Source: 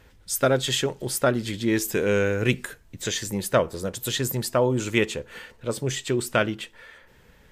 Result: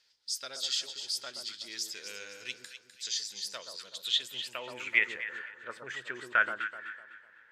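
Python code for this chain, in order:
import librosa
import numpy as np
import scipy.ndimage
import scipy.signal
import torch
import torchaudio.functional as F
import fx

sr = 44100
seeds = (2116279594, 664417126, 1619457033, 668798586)

y = fx.echo_alternate(x, sr, ms=126, hz=1200.0, feedback_pct=59, wet_db=-5)
y = fx.filter_sweep_bandpass(y, sr, from_hz=4800.0, to_hz=1600.0, start_s=3.69, end_s=5.41, q=4.9)
y = y * 10.0 ** (4.5 / 20.0)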